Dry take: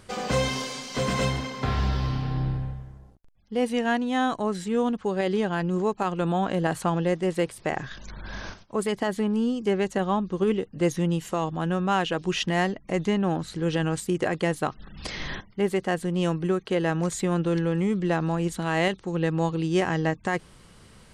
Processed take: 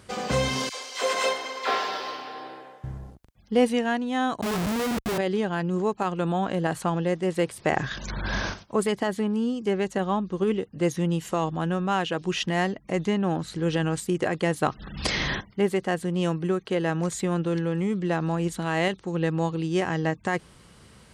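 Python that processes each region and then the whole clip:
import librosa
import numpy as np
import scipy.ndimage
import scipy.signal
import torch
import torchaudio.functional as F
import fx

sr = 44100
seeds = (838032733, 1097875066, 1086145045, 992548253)

y = fx.chain(x, sr, fx.highpass(hz=420.0, slope=24),
    fx.dispersion(late='lows', ms=55.0, hz=1200.0),
    fx.upward_expand(threshold_db=-40.0, expansion=1.5), at=(0.69, 2.84))
y = fx.chain(y, sr, fx.dispersion(late='highs', ms=70.0, hz=470.0),
    fx.schmitt(flips_db=-34.5), at=(4.41, 5.18))
y = fx.rider(y, sr, range_db=10, speed_s=0.5)
y = scipy.signal.sosfilt(scipy.signal.butter(2, 44.0, 'highpass', fs=sr, output='sos'), y)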